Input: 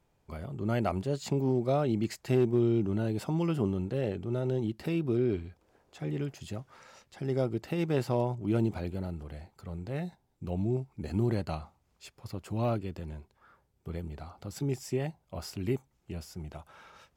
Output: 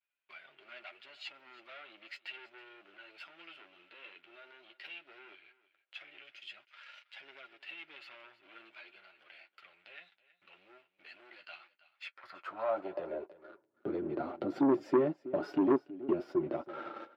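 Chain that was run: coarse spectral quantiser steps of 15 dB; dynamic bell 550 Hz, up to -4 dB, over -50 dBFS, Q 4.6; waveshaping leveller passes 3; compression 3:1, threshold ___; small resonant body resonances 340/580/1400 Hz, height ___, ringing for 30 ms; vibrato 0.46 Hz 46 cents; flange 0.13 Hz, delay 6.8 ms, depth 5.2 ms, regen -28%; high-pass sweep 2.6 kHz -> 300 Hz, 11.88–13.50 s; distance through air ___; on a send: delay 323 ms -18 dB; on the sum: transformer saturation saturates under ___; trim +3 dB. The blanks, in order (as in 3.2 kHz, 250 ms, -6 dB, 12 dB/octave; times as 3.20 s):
-35 dBFS, 10 dB, 380 m, 550 Hz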